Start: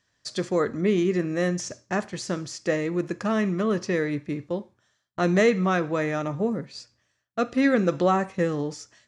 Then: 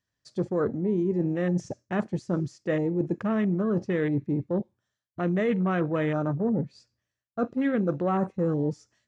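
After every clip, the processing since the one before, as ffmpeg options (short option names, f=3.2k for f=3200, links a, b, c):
-af "afwtdn=0.0251,lowshelf=f=340:g=7,areverse,acompressor=threshold=-25dB:ratio=6,areverse,volume=2dB"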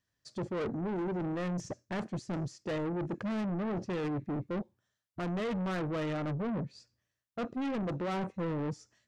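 -af "asoftclip=type=tanh:threshold=-31.5dB"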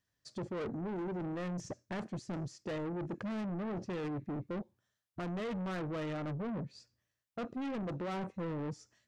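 -af "acompressor=threshold=-37dB:ratio=2.5,volume=-1dB"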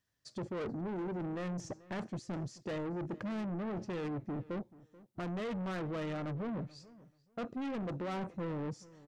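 -filter_complex "[0:a]asplit=2[a][b];[b]adelay=434,lowpass=f=2.7k:p=1,volume=-20dB,asplit=2[c][d];[d]adelay=434,lowpass=f=2.7k:p=1,volume=0.2[e];[a][c][e]amix=inputs=3:normalize=0"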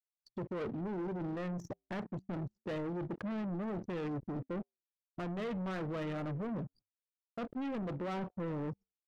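-af "aeval=exprs='val(0)*gte(abs(val(0)),0.00355)':c=same,flanger=delay=3.2:depth=5.9:regen=-89:speed=0.27:shape=triangular,anlmdn=0.00398,volume=4.5dB"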